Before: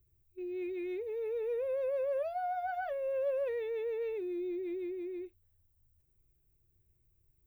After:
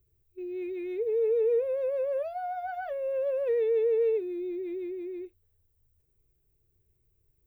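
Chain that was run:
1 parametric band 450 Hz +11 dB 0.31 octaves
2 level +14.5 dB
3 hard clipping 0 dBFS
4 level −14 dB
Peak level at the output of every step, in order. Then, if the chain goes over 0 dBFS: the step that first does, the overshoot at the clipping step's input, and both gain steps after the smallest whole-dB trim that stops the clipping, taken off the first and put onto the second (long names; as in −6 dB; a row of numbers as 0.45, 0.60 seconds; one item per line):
−20.5, −6.0, −6.0, −20.0 dBFS
no step passes full scale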